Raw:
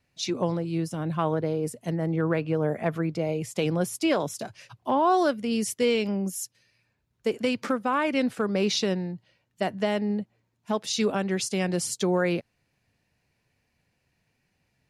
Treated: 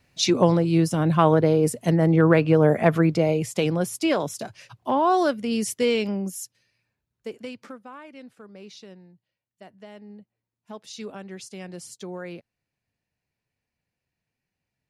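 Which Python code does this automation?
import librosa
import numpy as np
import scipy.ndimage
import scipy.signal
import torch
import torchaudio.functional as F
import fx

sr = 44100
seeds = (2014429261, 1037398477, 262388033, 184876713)

y = fx.gain(x, sr, db=fx.line((3.08, 8.5), (3.8, 1.5), (6.03, 1.5), (7.4, -9.5), (8.09, -19.0), (9.76, -19.0), (10.84, -11.5)))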